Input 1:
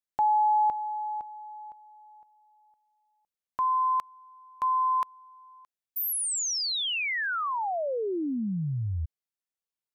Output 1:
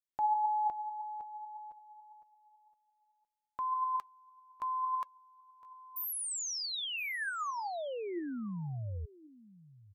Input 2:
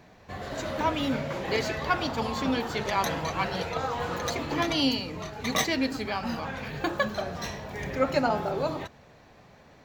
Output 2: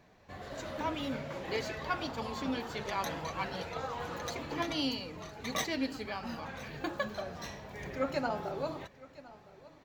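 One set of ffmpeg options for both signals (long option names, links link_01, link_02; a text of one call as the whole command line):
ffmpeg -i in.wav -af "aecho=1:1:1012:0.106,flanger=delay=1.7:depth=1.9:regen=80:speed=1.8:shape=sinusoidal,volume=-3.5dB" out.wav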